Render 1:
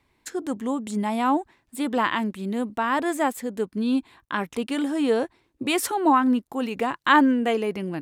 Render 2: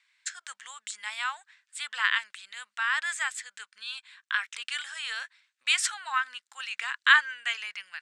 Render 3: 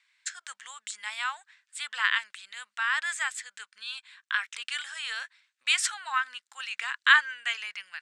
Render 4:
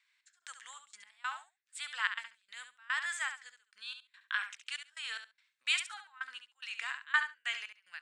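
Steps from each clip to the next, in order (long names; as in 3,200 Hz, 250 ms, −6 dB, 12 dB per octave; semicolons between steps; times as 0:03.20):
elliptic band-pass filter 1,500–8,100 Hz, stop band 60 dB; level +4 dB
no processing that can be heard
gate pattern "xx..xxxx.x.." 145 BPM −24 dB; repeating echo 69 ms, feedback 15%, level −9 dB; level −6 dB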